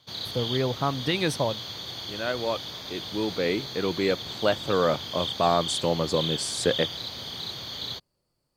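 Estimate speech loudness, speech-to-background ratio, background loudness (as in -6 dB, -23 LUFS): -27.5 LUFS, 5.5 dB, -33.0 LUFS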